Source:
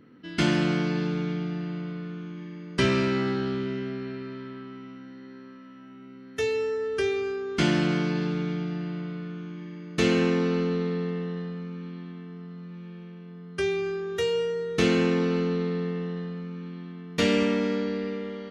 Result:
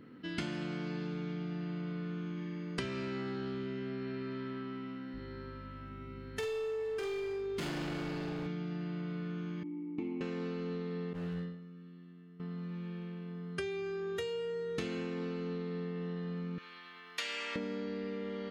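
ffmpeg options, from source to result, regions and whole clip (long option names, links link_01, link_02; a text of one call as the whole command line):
ffmpeg -i in.wav -filter_complex "[0:a]asettb=1/sr,asplit=3[link_01][link_02][link_03];[link_01]atrim=end=5.144[link_04];[link_02]atrim=start=5.14:end=8.47,asetpts=PTS-STARTPTS,afade=type=in:duration=0.004:curve=qsin,afade=type=out:start_time=3.326:duration=0.004:curve=qsin,aeval=exprs='val(0)+0.00501*(sin(2*PI*50*n/s)+sin(2*PI*2*50*n/s)/2+sin(2*PI*3*50*n/s)/3+sin(2*PI*4*50*n/s)/4+sin(2*PI*5*50*n/s)/5)':channel_layout=same,asoftclip=type=hard:threshold=-28dB,asplit=2[link_05][link_06];[link_06]adelay=48,volume=-4.5dB[link_07];[link_05][link_07]amix=inputs=2:normalize=0,atrim=end_sample=146853[link_08];[link_03]atrim=start=8.466[link_09];[link_04][link_08]acrossfade=duration=0.004:curve1=hsin:curve2=qsin[link_10];[link_10][link_09]acrossfade=duration=0.004:curve1=qsin:curve2=hsin,asettb=1/sr,asplit=3[link_11][link_12][link_13];[link_11]atrim=end=9.634[link_14];[link_12]atrim=start=9.63:end=10.21,asetpts=PTS-STARTPTS,afade=type=in:duration=0.004:curve=qsin,afade=type=out:start_time=0.576:duration=0.004:curve=qsin,asplit=3[link_15][link_16][link_17];[link_15]bandpass=frequency=300:width_type=q:width=8,volume=0dB[link_18];[link_16]bandpass=frequency=870:width_type=q:width=8,volume=-6dB[link_19];[link_17]bandpass=frequency=2240:width_type=q:width=8,volume=-9dB[link_20];[link_18][link_19][link_20]amix=inputs=3:normalize=0,tiltshelf=frequency=1400:gain=7[link_21];[link_13]atrim=start=10.206[link_22];[link_14][link_21]acrossfade=duration=0.004:curve1=hsin:curve2=qsin[link_23];[link_23][link_22]acrossfade=duration=0.004:curve1=qsin:curve2=hsin,asettb=1/sr,asplit=3[link_24][link_25][link_26];[link_24]atrim=end=11.134[link_27];[link_25]atrim=start=11.13:end=12.4,asetpts=PTS-STARTPTS,afade=type=in:duration=0.004:curve=qsin,afade=type=out:start_time=1.266:duration=0.004:curve=qsin,agate=range=-18dB:threshold=-33dB:ratio=16:release=100:detection=peak,volume=34.5dB,asoftclip=hard,volume=-34.5dB,asplit=2[link_28][link_29];[link_29]adelay=12,volume=-3.5dB[link_30];[link_28][link_30]amix=inputs=2:normalize=0,atrim=end_sample=56007[link_31];[link_26]atrim=start=12.396[link_32];[link_27][link_31]acrossfade=duration=0.004:curve1=hsin:curve2=qsin[link_33];[link_33][link_32]acrossfade=duration=0.004:curve1=qsin:curve2=hsin,asettb=1/sr,asplit=3[link_34][link_35][link_36];[link_34]atrim=end=16.584[link_37];[link_35]atrim=start=16.58:end=17.56,asetpts=PTS-STARTPTS,afade=type=in:duration=0.004:curve=qsin,afade=type=out:start_time=0.976:duration=0.004:curve=qsin,highpass=1200,acompressor=mode=upward:threshold=-44dB:ratio=2.5:attack=3.2:release=140:knee=2.83:detection=peak[link_38];[link_36]atrim=start=17.556[link_39];[link_37][link_38]acrossfade=duration=0.004:curve1=hsin:curve2=qsin[link_40];[link_40][link_39]acrossfade=duration=0.004:curve1=qsin:curve2=hsin,bandreject=frequency=5800:width=17,acompressor=threshold=-35dB:ratio=10" out.wav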